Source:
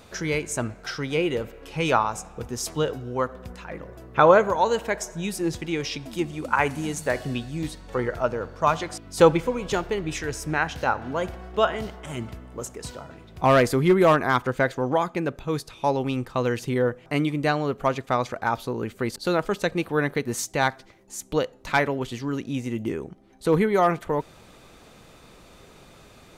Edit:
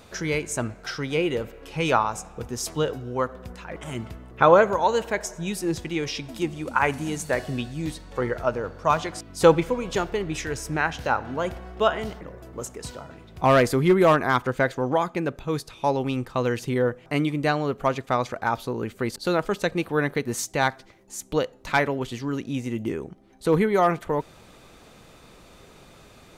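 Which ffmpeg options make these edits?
-filter_complex "[0:a]asplit=5[s0][s1][s2][s3][s4];[s0]atrim=end=3.762[s5];[s1]atrim=start=11.978:end=12.532[s6];[s2]atrim=start=4.078:end=11.982[s7];[s3]atrim=start=3.758:end=4.082[s8];[s4]atrim=start=12.528[s9];[s5][s6]acrossfade=d=0.004:c1=hsin:c2=hsin[s10];[s10][s7]acrossfade=d=0.004:c1=hsin:c2=hsin[s11];[s11][s8]acrossfade=d=0.004:c1=hsin:c2=hsin[s12];[s12][s9]acrossfade=d=0.004:c1=hsin:c2=hsin"

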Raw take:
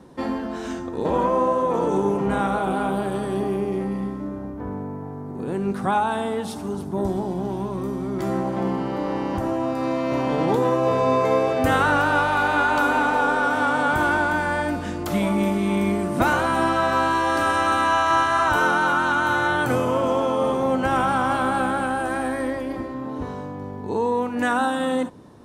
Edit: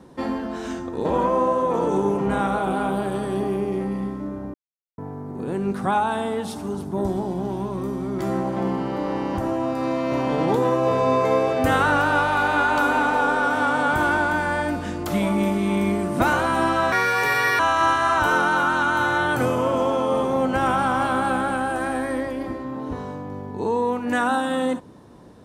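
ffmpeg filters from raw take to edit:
-filter_complex "[0:a]asplit=5[s0][s1][s2][s3][s4];[s0]atrim=end=4.54,asetpts=PTS-STARTPTS,afade=t=out:st=4.536:d=0.004:c=hsin[s5];[s1]atrim=start=4.54:end=4.98,asetpts=PTS-STARTPTS,volume=0[s6];[s2]atrim=start=4.98:end=16.924,asetpts=PTS-STARTPTS,afade=t=in:d=0.004:c=hsin[s7];[s3]atrim=start=16.92:end=17.89,asetpts=PTS-STARTPTS,asetrate=63504,aresample=44100,atrim=end_sample=29706,asetpts=PTS-STARTPTS[s8];[s4]atrim=start=17.886[s9];[s5][s6][s7]concat=n=3:v=0:a=1[s10];[s10][s8]acrossfade=d=0.004:c1=hsin:c2=hsin[s11];[s11][s9]acrossfade=d=0.004:c1=hsin:c2=hsin"

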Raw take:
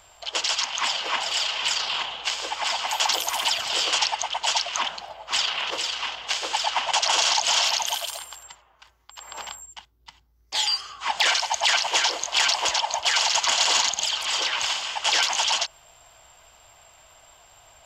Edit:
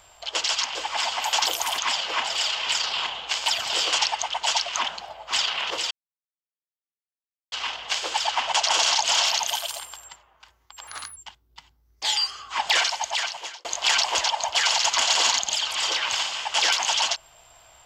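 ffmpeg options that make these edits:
-filter_complex "[0:a]asplit=8[s0][s1][s2][s3][s4][s5][s6][s7];[s0]atrim=end=0.752[s8];[s1]atrim=start=2.418:end=3.462[s9];[s2]atrim=start=0.748:end=2.422[s10];[s3]atrim=start=3.458:end=5.91,asetpts=PTS-STARTPTS,afade=t=out:st=2.448:d=0.004:c=hsin,apad=pad_dur=1.61[s11];[s4]atrim=start=5.91:end=9.264,asetpts=PTS-STARTPTS,afade=t=in:d=0.004:c=hsin[s12];[s5]atrim=start=9.26:end=9.67,asetpts=PTS-STARTPTS,asetrate=60858,aresample=44100,atrim=end_sample=13102,asetpts=PTS-STARTPTS[s13];[s6]atrim=start=9.666:end=12.15,asetpts=PTS-STARTPTS,afade=t=out:st=1.604:d=0.88[s14];[s7]atrim=start=12.15,asetpts=PTS-STARTPTS,afade=t=in:d=0.004:c=hsin[s15];[s8][s9]acrossfade=d=0.004:c1=hsin:c2=hsin[s16];[s16][s10]acrossfade=d=0.004:c1=hsin:c2=hsin[s17];[s11][s12]concat=n=2:v=0:a=1[s18];[s17][s18]acrossfade=d=0.004:c1=hsin:c2=hsin[s19];[s19][s13]acrossfade=d=0.004:c1=hsin:c2=hsin[s20];[s14][s15]concat=n=2:v=0:a=1[s21];[s20][s21]acrossfade=d=0.004:c1=hsin:c2=hsin"

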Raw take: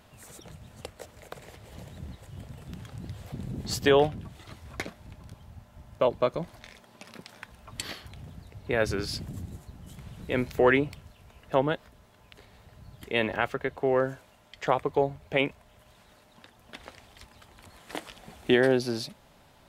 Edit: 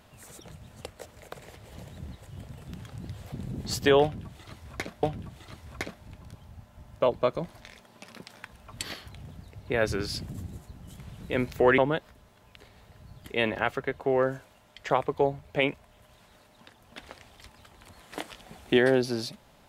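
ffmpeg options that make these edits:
-filter_complex "[0:a]asplit=3[s0][s1][s2];[s0]atrim=end=5.032[s3];[s1]atrim=start=4.018:end=10.772[s4];[s2]atrim=start=11.548[s5];[s3][s4]acrossfade=d=0.004:c1=hsin:c2=hsin[s6];[s6][s5]acrossfade=d=0.004:c1=hsin:c2=hsin"

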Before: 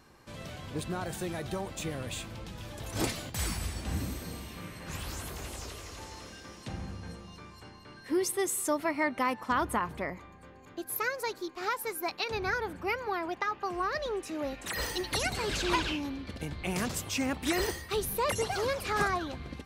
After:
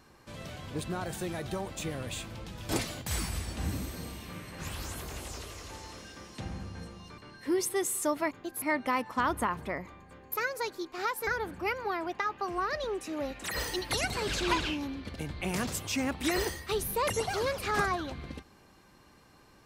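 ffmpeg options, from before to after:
-filter_complex "[0:a]asplit=7[s0][s1][s2][s3][s4][s5][s6];[s0]atrim=end=2.692[s7];[s1]atrim=start=2.968:end=7.462[s8];[s2]atrim=start=7.808:end=8.942[s9];[s3]atrim=start=10.638:end=10.952[s10];[s4]atrim=start=8.938:end=10.642[s11];[s5]atrim=start=10.948:end=11.902[s12];[s6]atrim=start=12.488[s13];[s7][s8]acrossfade=d=0.004:c1=hsin:c2=hsin[s14];[s14][s9]acrossfade=d=0.004:c1=hsin:c2=hsin[s15];[s15][s10]acrossfade=d=0.004:c1=hsin:c2=hsin[s16];[s16][s11]acrossfade=d=0.004:c1=hsin:c2=hsin[s17];[s17][s12]acrossfade=d=0.004:c1=hsin:c2=hsin[s18];[s18][s13]acrossfade=d=0.004:c1=hsin:c2=hsin"

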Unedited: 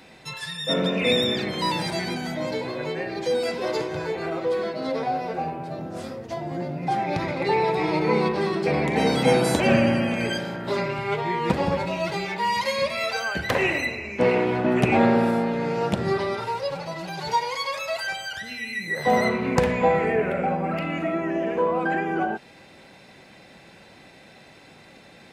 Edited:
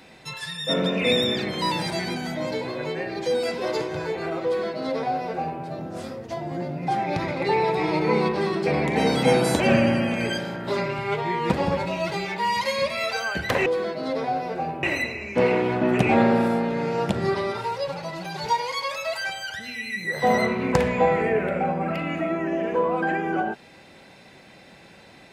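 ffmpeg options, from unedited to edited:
-filter_complex "[0:a]asplit=3[s0][s1][s2];[s0]atrim=end=13.662[s3];[s1]atrim=start=4.448:end=5.622[s4];[s2]atrim=start=13.658[s5];[s3][s4]acrossfade=d=0.004:c1=hsin:c2=hsin[s6];[s6][s5]acrossfade=d=0.004:c1=hsin:c2=hsin"

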